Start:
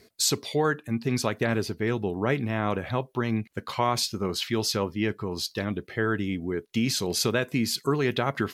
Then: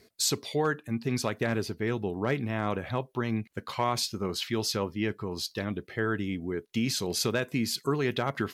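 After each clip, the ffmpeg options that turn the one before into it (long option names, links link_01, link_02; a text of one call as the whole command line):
ffmpeg -i in.wav -af "asoftclip=type=hard:threshold=-13dB,volume=-3dB" out.wav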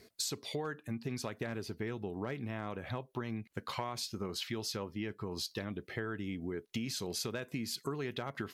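ffmpeg -i in.wav -af "acompressor=threshold=-35dB:ratio=6" out.wav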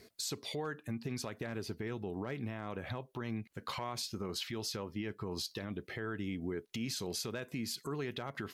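ffmpeg -i in.wav -af "alimiter=level_in=5.5dB:limit=-24dB:level=0:latency=1:release=48,volume=-5.5dB,volume=1dB" out.wav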